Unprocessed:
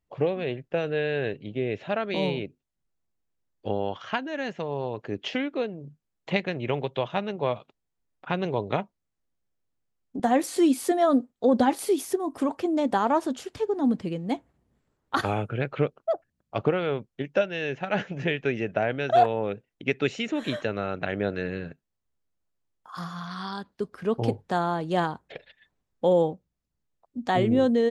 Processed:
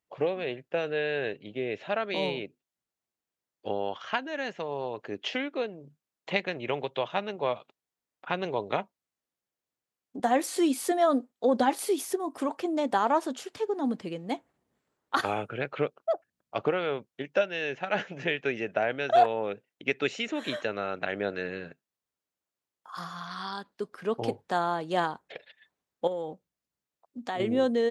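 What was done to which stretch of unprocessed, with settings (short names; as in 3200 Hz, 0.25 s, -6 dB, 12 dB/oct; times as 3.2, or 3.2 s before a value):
26.07–27.4 compressor, threshold -27 dBFS
whole clip: HPF 430 Hz 6 dB/oct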